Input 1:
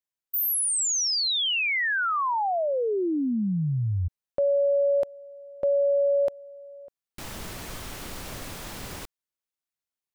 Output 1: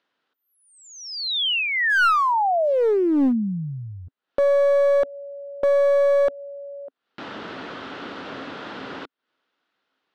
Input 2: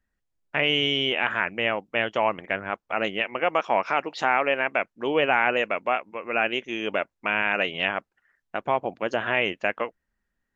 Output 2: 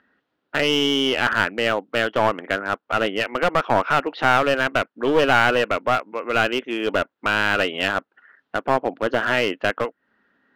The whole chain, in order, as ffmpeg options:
ffmpeg -i in.wav -af "acompressor=mode=upward:threshold=-35dB:ratio=1.5:attack=5.1:release=152:knee=2.83:detection=peak,highpass=240,equalizer=frequency=270:width_type=q:width=4:gain=7,equalizer=frequency=450:width_type=q:width=4:gain=3,equalizer=frequency=1400:width_type=q:width=4:gain=6,equalizer=frequency=2300:width_type=q:width=4:gain=-5,lowpass=frequency=3600:width=0.5412,lowpass=frequency=3600:width=1.3066,aeval=exprs='clip(val(0),-1,0.0794)':channel_layout=same,volume=5dB" out.wav

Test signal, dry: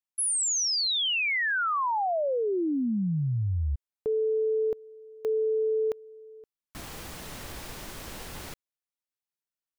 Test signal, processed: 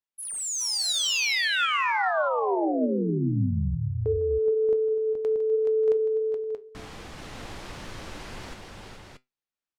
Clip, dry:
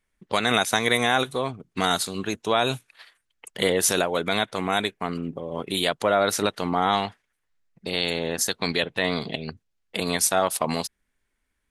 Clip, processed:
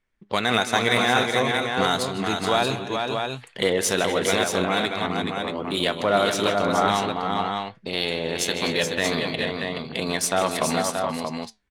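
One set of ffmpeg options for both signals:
ffmpeg -i in.wav -af "flanger=delay=7.8:depth=2.4:regen=75:speed=1.4:shape=sinusoidal,aecho=1:1:155|251|404|424|586|630:0.211|0.15|0.15|0.562|0.133|0.531,adynamicsmooth=sensitivity=4:basefreq=6000,volume=4.5dB" out.wav

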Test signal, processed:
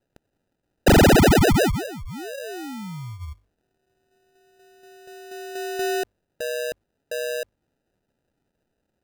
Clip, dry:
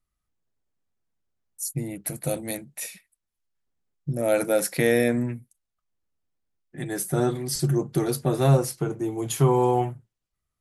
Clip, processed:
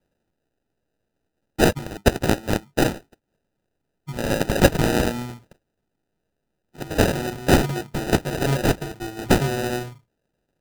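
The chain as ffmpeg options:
ffmpeg -i in.wav -af "aexciter=amount=5.6:drive=7.5:freq=2200,bandreject=frequency=50:width_type=h:width=6,bandreject=frequency=100:width_type=h:width=6,acrusher=samples=40:mix=1:aa=0.000001,volume=-5dB" out.wav

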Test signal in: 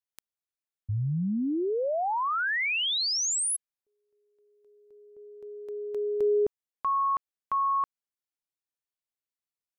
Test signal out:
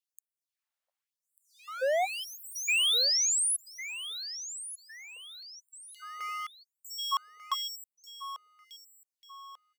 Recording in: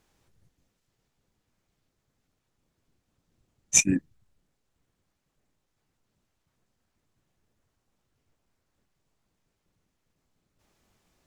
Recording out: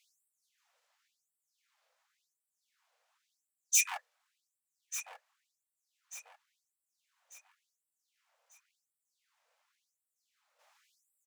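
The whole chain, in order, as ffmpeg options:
ffmpeg -i in.wav -filter_complex "[0:a]asplit=2[link_01][link_02];[link_02]highpass=frequency=720:poles=1,volume=15dB,asoftclip=type=tanh:threshold=-3dB[link_03];[link_01][link_03]amix=inputs=2:normalize=0,lowpass=frequency=1400:poles=1,volume=-6dB,asoftclip=type=hard:threshold=-25.5dB,crystalizer=i=1:c=0,asplit=2[link_04][link_05];[link_05]aecho=0:1:1192|2384|3576|4768:0.224|0.0851|0.0323|0.0123[link_06];[link_04][link_06]amix=inputs=2:normalize=0,afftfilt=real='re*gte(b*sr/1024,450*pow(7600/450,0.5+0.5*sin(2*PI*0.92*pts/sr)))':imag='im*gte(b*sr/1024,450*pow(7600/450,0.5+0.5*sin(2*PI*0.92*pts/sr)))':win_size=1024:overlap=0.75" out.wav

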